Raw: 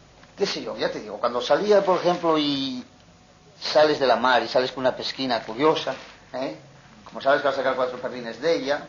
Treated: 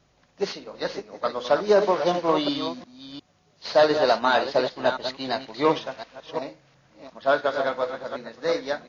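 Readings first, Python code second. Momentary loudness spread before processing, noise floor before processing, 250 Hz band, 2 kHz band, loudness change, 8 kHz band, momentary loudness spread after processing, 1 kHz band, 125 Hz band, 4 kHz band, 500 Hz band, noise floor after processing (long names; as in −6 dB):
13 LU, −52 dBFS, −2.5 dB, −2.0 dB, −1.5 dB, can't be measured, 17 LU, −1.5 dB, −2.5 dB, −3.5 dB, −1.0 dB, −63 dBFS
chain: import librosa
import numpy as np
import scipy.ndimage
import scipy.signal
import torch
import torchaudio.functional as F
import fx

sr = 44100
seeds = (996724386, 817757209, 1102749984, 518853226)

y = fx.reverse_delay(x, sr, ms=355, wet_db=-6.0)
y = fx.upward_expand(y, sr, threshold_db=-38.0, expansion=1.5)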